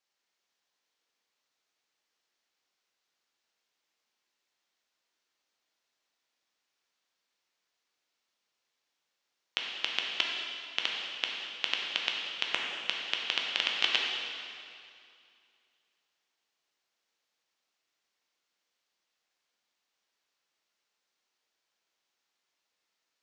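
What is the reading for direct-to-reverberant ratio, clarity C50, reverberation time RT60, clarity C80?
−1.5 dB, 0.5 dB, 2.4 s, 2.0 dB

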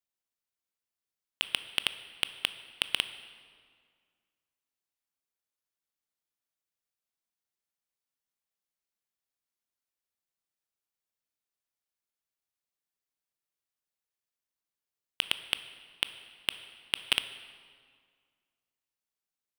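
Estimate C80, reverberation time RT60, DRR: 13.5 dB, 2.0 s, 11.5 dB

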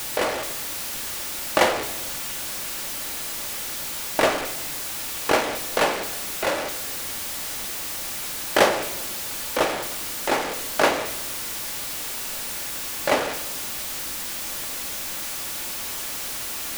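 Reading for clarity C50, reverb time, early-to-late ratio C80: 12.0 dB, 1.0 s, 13.5 dB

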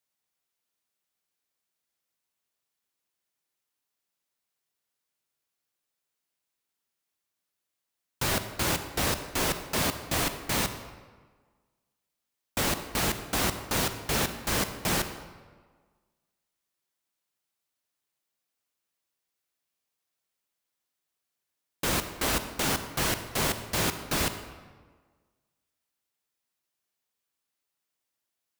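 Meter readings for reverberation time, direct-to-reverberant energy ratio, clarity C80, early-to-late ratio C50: 1.5 s, 9.0 dB, 11.0 dB, 9.5 dB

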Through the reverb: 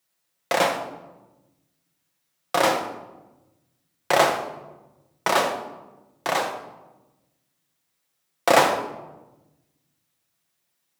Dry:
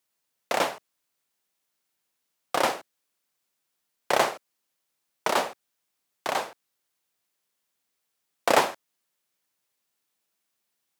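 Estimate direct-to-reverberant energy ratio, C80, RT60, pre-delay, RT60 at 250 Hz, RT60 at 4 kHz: 1.0 dB, 9.5 dB, 1.1 s, 6 ms, 1.5 s, 0.60 s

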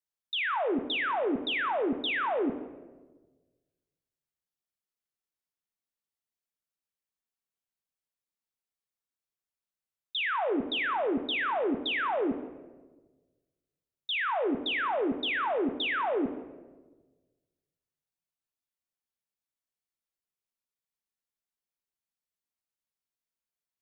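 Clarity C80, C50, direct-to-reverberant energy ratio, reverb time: 12.5 dB, 11.0 dB, 8.0 dB, 1.3 s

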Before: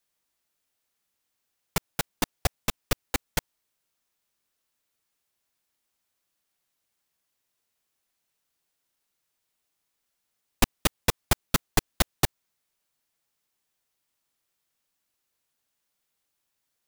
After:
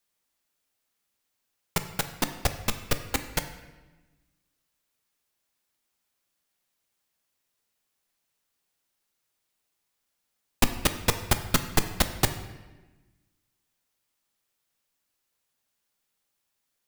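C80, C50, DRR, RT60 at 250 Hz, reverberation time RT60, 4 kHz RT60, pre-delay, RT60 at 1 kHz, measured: 12.5 dB, 10.5 dB, 8.0 dB, 1.6 s, 1.2 s, 0.95 s, 4 ms, 1.1 s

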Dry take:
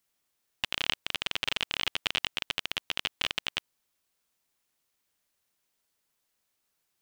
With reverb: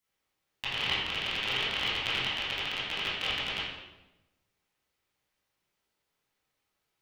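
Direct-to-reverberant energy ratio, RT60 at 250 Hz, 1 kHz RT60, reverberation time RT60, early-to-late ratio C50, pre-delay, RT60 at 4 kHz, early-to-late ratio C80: −10.0 dB, 1.2 s, 0.95 s, 1.0 s, −0.5 dB, 14 ms, 0.80 s, 3.0 dB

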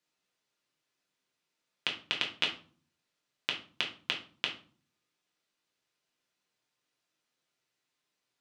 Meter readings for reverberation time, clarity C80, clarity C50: 0.45 s, 15.0 dB, 9.5 dB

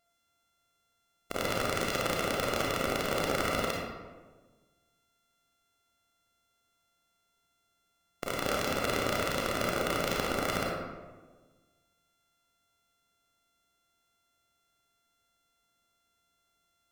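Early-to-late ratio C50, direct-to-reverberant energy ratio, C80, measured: −0.5 dB, −3.0 dB, 2.0 dB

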